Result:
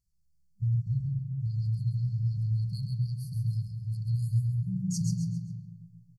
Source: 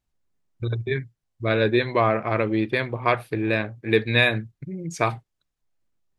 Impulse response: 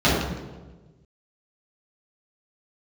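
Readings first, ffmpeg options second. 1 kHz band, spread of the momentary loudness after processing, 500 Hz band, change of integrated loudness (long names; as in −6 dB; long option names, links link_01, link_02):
below −40 dB, 6 LU, below −40 dB, −7.5 dB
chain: -filter_complex "[0:a]asplit=2[link_01][link_02];[1:a]atrim=start_sample=2205,adelay=113[link_03];[link_02][link_03]afir=irnorm=-1:irlink=0,volume=-29dB[link_04];[link_01][link_04]amix=inputs=2:normalize=0,alimiter=limit=-11.5dB:level=0:latency=1:release=19,asplit=2[link_05][link_06];[link_06]aecho=0:1:134|268|402|536:0.531|0.191|0.0688|0.0248[link_07];[link_05][link_07]amix=inputs=2:normalize=0,afftfilt=real='re*(1-between(b*sr/4096,200,4200))':imag='im*(1-between(b*sr/4096,200,4200))':win_size=4096:overlap=0.75"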